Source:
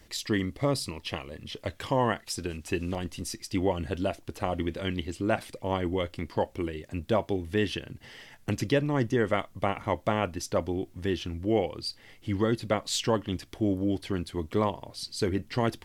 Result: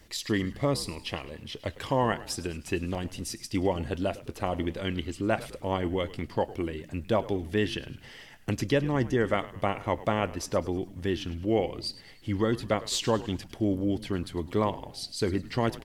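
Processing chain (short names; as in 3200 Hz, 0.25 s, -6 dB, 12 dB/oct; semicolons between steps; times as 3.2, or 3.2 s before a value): frequency-shifting echo 0.104 s, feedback 49%, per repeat -82 Hz, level -17 dB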